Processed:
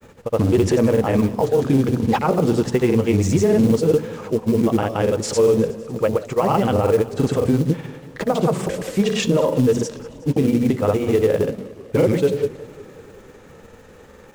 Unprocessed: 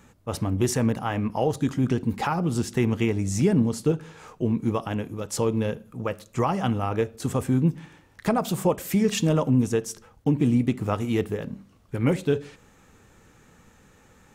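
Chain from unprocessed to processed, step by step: Bessel low-pass 5300 Hz, order 2; bell 490 Hz +10 dB 0.75 oct; notches 60/120/180/240/300 Hz; limiter -16 dBFS, peak gain reduction 11.5 dB; soft clip -11.5 dBFS, distortion -30 dB; companded quantiser 6-bit; grains, pitch spread up and down by 0 st; warbling echo 0.184 s, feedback 67%, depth 176 cents, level -19.5 dB; gain +9 dB

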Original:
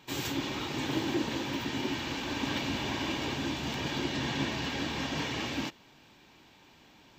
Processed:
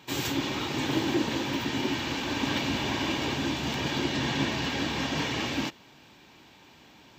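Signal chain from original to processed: HPF 51 Hz; gain +4 dB

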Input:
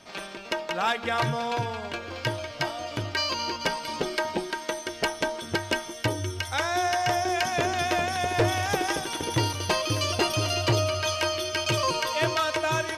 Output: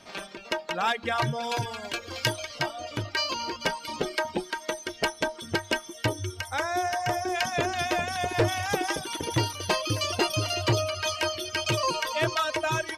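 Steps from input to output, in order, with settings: 6.31–7.35 dynamic EQ 3600 Hz, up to -6 dB, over -44 dBFS, Q 1; reverb removal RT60 0.82 s; 1.42–2.58 high shelf 4900 Hz -> 3100 Hz +12 dB

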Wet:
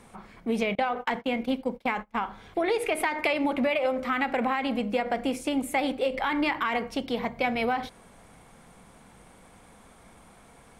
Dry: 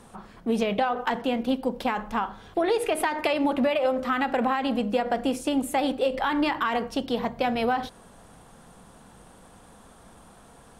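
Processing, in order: 0.75–2.28 gate -30 dBFS, range -27 dB; bell 2200 Hz +12 dB 0.24 oct; gain -2.5 dB

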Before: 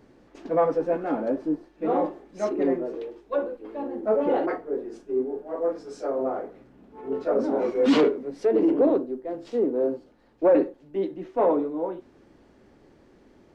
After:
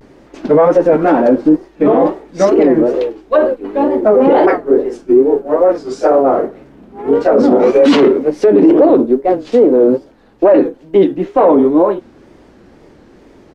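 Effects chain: downsampling 32000 Hz; wow and flutter 150 cents; maximiser +22 dB; upward expander 1.5:1, over -23 dBFS

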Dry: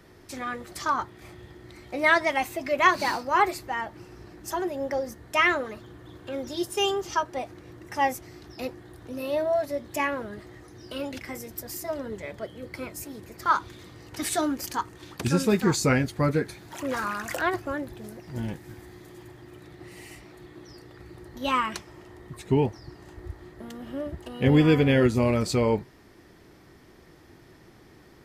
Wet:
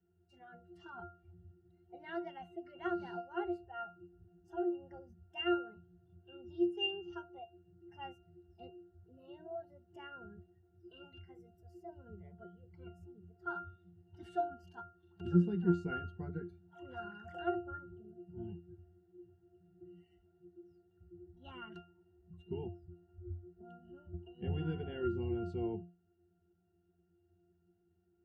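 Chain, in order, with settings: spectral noise reduction 13 dB; octave resonator F, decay 0.33 s; gain +3 dB

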